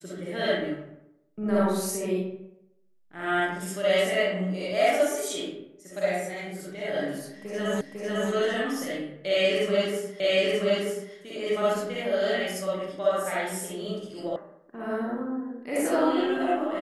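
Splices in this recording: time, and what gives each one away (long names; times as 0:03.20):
0:07.81: the same again, the last 0.5 s
0:10.20: the same again, the last 0.93 s
0:14.36: cut off before it has died away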